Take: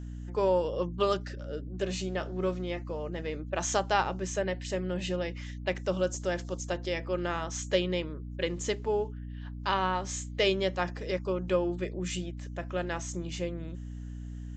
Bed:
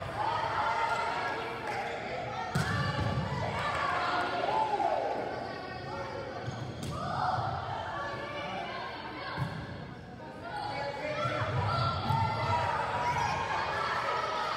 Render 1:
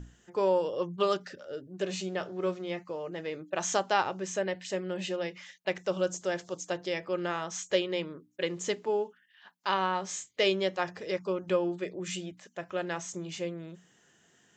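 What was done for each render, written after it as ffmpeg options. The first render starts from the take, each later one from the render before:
-af "bandreject=f=60:t=h:w=6,bandreject=f=120:t=h:w=6,bandreject=f=180:t=h:w=6,bandreject=f=240:t=h:w=6,bandreject=f=300:t=h:w=6"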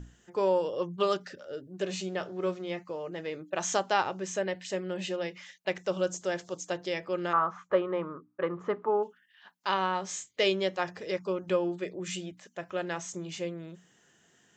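-filter_complex "[0:a]asettb=1/sr,asplit=3[s0][s1][s2];[s0]atrim=end=7.334[s3];[s1]atrim=start=7.33:end=9.03,asetpts=PTS-STARTPTS,afade=t=in:d=0.004:c=qsin,afade=t=out:st=1.696:d=0.004:c=qsin,lowpass=f=1200:t=q:w=6.3[s4];[s2]atrim=start=9.026[s5];[s3][s4]acrossfade=d=0.004:c1=hsin:c2=qsin[s6];[s6][s5]acrossfade=d=0.004:c1=qsin:c2=hsin"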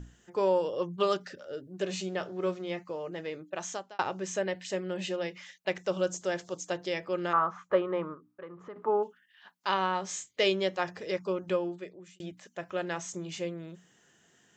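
-filter_complex "[0:a]asettb=1/sr,asplit=3[s0][s1][s2];[s0]atrim=end=8.144[s3];[s1]atrim=start=8.14:end=8.76,asetpts=PTS-STARTPTS,afade=t=in:d=0.004:c=qsin,afade=t=out:st=0.616:d=0.004:c=qsin,acompressor=threshold=0.00251:ratio=2:attack=3.2:release=140:knee=1:detection=peak[s4];[s2]atrim=start=8.756[s5];[s3][s4]acrossfade=d=0.004:c1=hsin:c2=qsin[s6];[s6][s5]acrossfade=d=0.004:c1=qsin:c2=hsin,asplit=3[s7][s8][s9];[s7]atrim=end=3.99,asetpts=PTS-STARTPTS,afade=t=out:st=2.96:d=1.03:c=qsin[s10];[s8]atrim=start=3.99:end=12.2,asetpts=PTS-STARTPTS,afade=t=in:d=0.004:c=hsin,afade=t=out:st=7.42:d=0.79[s11];[s9]atrim=start=12.2,asetpts=PTS-STARTPTS,afade=t=in:d=0.004:c=hsin[s12];[s10][s11][s12]concat=n=3:v=0:a=1"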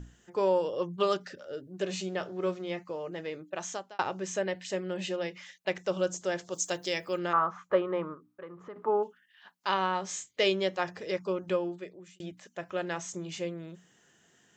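-filter_complex "[0:a]asplit=3[s0][s1][s2];[s0]afade=t=out:st=6.52:d=0.02[s3];[s1]aemphasis=mode=production:type=75fm,afade=t=in:st=6.52:d=0.02,afade=t=out:st=7.17:d=0.02[s4];[s2]afade=t=in:st=7.17:d=0.02[s5];[s3][s4][s5]amix=inputs=3:normalize=0"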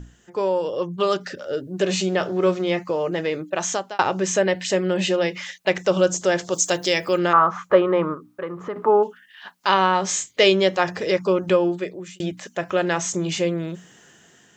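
-filter_complex "[0:a]dynaudnorm=f=520:g=5:m=2.99,asplit=2[s0][s1];[s1]alimiter=limit=0.075:level=0:latency=1:release=104,volume=0.891[s2];[s0][s2]amix=inputs=2:normalize=0"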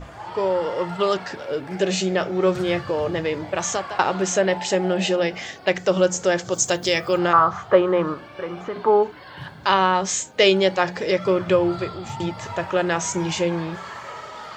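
-filter_complex "[1:a]volume=0.631[s0];[0:a][s0]amix=inputs=2:normalize=0"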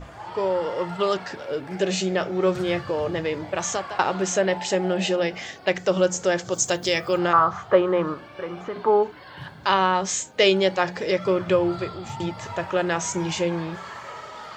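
-af "volume=0.794"

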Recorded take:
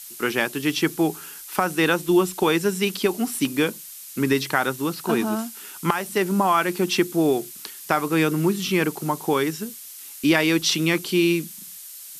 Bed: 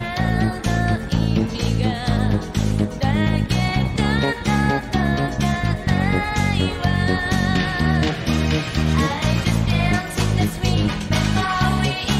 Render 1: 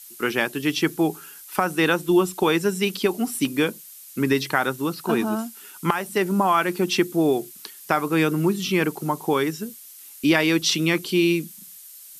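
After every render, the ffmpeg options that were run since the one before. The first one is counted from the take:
-af "afftdn=nr=6:nf=-40"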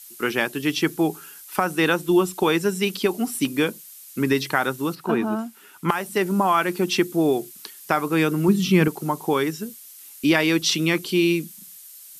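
-filter_complex "[0:a]asettb=1/sr,asplit=3[s0][s1][s2];[s0]atrim=end=4.954[s3];[s1]atrim=start=4.95:end=5.89,asetpts=PTS-STARTPTS,afade=t=in:d=0.004:c=qsin,afade=t=out:st=0.936:d=0.004:c=qsin,acrossover=split=2900[s4][s5];[s5]acompressor=threshold=0.00355:ratio=4:attack=1:release=60[s6];[s4][s6]amix=inputs=2:normalize=0[s7];[s2]atrim=start=5.886[s8];[s3][s7]acrossfade=d=0.004:c1=hsin:c2=qsin[s9];[s9][s8]acrossfade=d=0.004:c1=qsin:c2=hsin,asettb=1/sr,asplit=3[s10][s11][s12];[s10]atrim=end=8.484[s13];[s11]atrim=start=8.48:end=8.88,asetpts=PTS-STARTPTS,afade=t=in:d=0.004:c=qsin,afade=t=out:st=0.396:d=0.004:c=qsin,equalizer=f=140:t=o:w=1.7:g=10[s14];[s12]atrim=start=8.876[s15];[s13][s14]acrossfade=d=0.004:c1=hsin:c2=qsin[s16];[s16][s15]acrossfade=d=0.004:c1=qsin:c2=hsin"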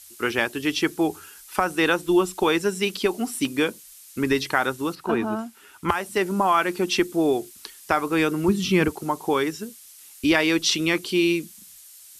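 -af "lowpass=11000,lowshelf=f=110:t=q:w=3:g=9.5"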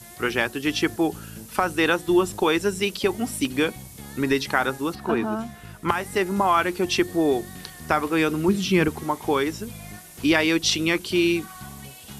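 -filter_complex "[1:a]volume=0.0794[s0];[0:a][s0]amix=inputs=2:normalize=0"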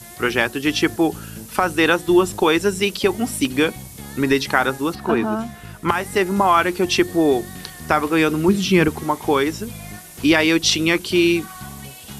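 -af "volume=1.68,alimiter=limit=0.891:level=0:latency=1"

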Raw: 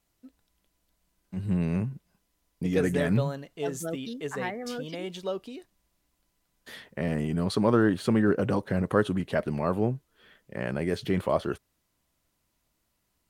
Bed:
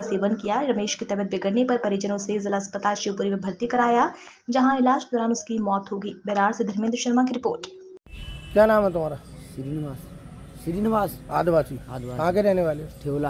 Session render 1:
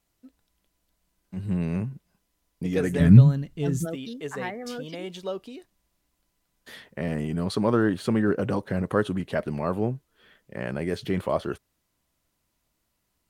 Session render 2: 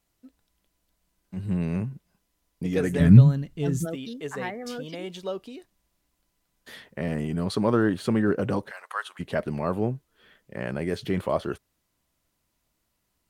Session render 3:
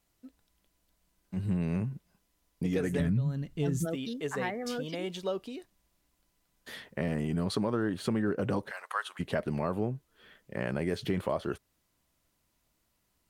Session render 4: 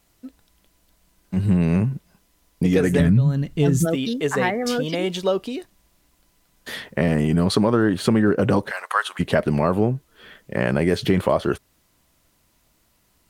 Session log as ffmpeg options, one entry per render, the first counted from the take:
-filter_complex "[0:a]asplit=3[s0][s1][s2];[s0]afade=t=out:st=2.99:d=0.02[s3];[s1]asubboost=boost=10.5:cutoff=200,afade=t=in:st=2.99:d=0.02,afade=t=out:st=3.84:d=0.02[s4];[s2]afade=t=in:st=3.84:d=0.02[s5];[s3][s4][s5]amix=inputs=3:normalize=0"
-filter_complex "[0:a]asplit=3[s0][s1][s2];[s0]afade=t=out:st=8.69:d=0.02[s3];[s1]highpass=f=920:w=0.5412,highpass=f=920:w=1.3066,afade=t=in:st=8.69:d=0.02,afade=t=out:st=9.19:d=0.02[s4];[s2]afade=t=in:st=9.19:d=0.02[s5];[s3][s4][s5]amix=inputs=3:normalize=0"
-af "alimiter=limit=0.2:level=0:latency=1:release=409,acompressor=threshold=0.0447:ratio=3"
-af "volume=3.98"

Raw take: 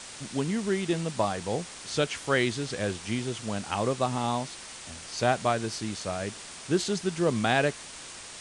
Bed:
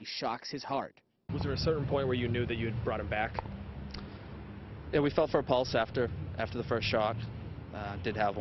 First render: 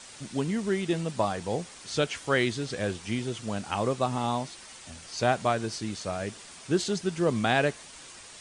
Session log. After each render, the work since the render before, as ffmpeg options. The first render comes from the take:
-af "afftdn=nr=6:nf=-44"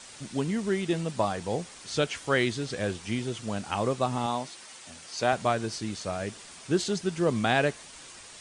-filter_complex "[0:a]asettb=1/sr,asplit=3[s0][s1][s2];[s0]atrim=end=4.264[s3];[s1]atrim=start=4.26:end=5.33,asetpts=PTS-STARTPTS,afade=t=in:d=0.004:c=qsin,afade=t=out:st=1.066:d=0.004:c=qsin,highpass=f=230:p=1[s4];[s2]atrim=start=5.326[s5];[s3][s4]acrossfade=d=0.004:c1=hsin:c2=qsin[s6];[s6][s5]acrossfade=d=0.004:c1=qsin:c2=hsin"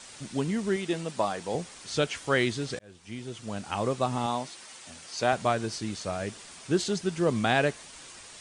-filter_complex "[0:a]asettb=1/sr,asplit=3[s0][s1][s2];[s0]atrim=end=0.764[s3];[s1]atrim=start=0.76:end=1.55,asetpts=PTS-STARTPTS,afade=t=in:d=0.004:c=qsin,afade=t=out:st=0.786:d=0.004:c=qsin,equalizer=f=60:w=0.59:g=-14.5[s4];[s2]atrim=start=1.546[s5];[s3][s4]acrossfade=d=0.004:c1=hsin:c2=qsin[s6];[s6][s5]acrossfade=d=0.004:c1=qsin:c2=hsin,asplit=2[s7][s8];[s7]atrim=end=2.79,asetpts=PTS-STARTPTS,afade=t=out:st=2.786:d=0.004:c=hsin[s9];[s8]atrim=start=2.79,asetpts=PTS-STARTPTS,afade=t=in:d=1.49:c=qsin[s10];[s9][s10]concat=n=2:v=0:a=1"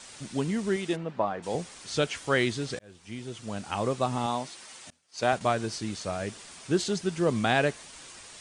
-filter_complex "[0:a]asplit=3[s0][s1][s2];[s0]afade=t=out:st=0.95:d=0.02[s3];[s1]lowpass=1900,afade=t=in:st=0.95:d=0.02,afade=t=out:st=1.42:d=0.02[s4];[s2]afade=t=in:st=1.42:d=0.02[s5];[s3][s4][s5]amix=inputs=3:normalize=0,asettb=1/sr,asplit=3[s6][s7][s8];[s6]atrim=end=4.904[s9];[s7]atrim=start=4.9:end=5.41,asetpts=PTS-STARTPTS,afade=t=in:d=0.004:c=qsin,afade=t=out:st=0.506:d=0.004:c=qsin,agate=range=0.0224:threshold=0.0224:ratio=3:release=100:detection=peak[s10];[s8]atrim=start=5.406[s11];[s9][s10]acrossfade=d=0.004:c1=hsin:c2=qsin[s12];[s12][s11]acrossfade=d=0.004:c1=qsin:c2=hsin"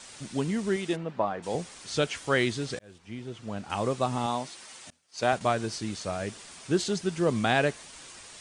-filter_complex "[0:a]asettb=1/sr,asplit=3[s0][s1][s2];[s0]atrim=end=2.984[s3];[s1]atrim=start=2.98:end=3.7,asetpts=PTS-STARTPTS,afade=t=in:d=0.004:c=qsin,afade=t=out:st=0.716:d=0.004:c=qsin,lowpass=f=2600:p=1[s4];[s2]atrim=start=3.696[s5];[s3][s4]acrossfade=d=0.004:c1=hsin:c2=qsin[s6];[s6][s5]acrossfade=d=0.004:c1=qsin:c2=hsin"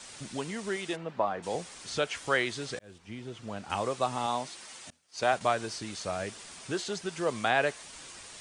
-filter_complex "[0:a]acrossover=split=450|2800[s0][s1][s2];[s0]acompressor=threshold=0.0112:ratio=6[s3];[s2]alimiter=level_in=1.88:limit=0.0631:level=0:latency=1:release=152,volume=0.531[s4];[s3][s1][s4]amix=inputs=3:normalize=0"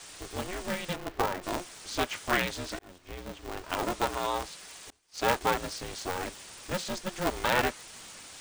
-af "aeval=exprs='val(0)*sgn(sin(2*PI*180*n/s))':c=same"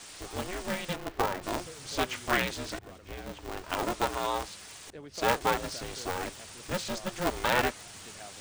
-filter_complex "[1:a]volume=0.126[s0];[0:a][s0]amix=inputs=2:normalize=0"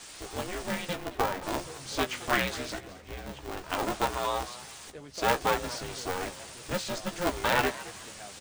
-filter_complex "[0:a]asplit=2[s0][s1];[s1]adelay=15,volume=0.398[s2];[s0][s2]amix=inputs=2:normalize=0,asplit=4[s3][s4][s5][s6];[s4]adelay=218,afreqshift=76,volume=0.141[s7];[s5]adelay=436,afreqshift=152,volume=0.0468[s8];[s6]adelay=654,afreqshift=228,volume=0.0153[s9];[s3][s7][s8][s9]amix=inputs=4:normalize=0"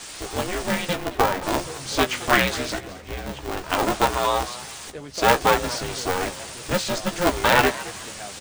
-af "volume=2.66"

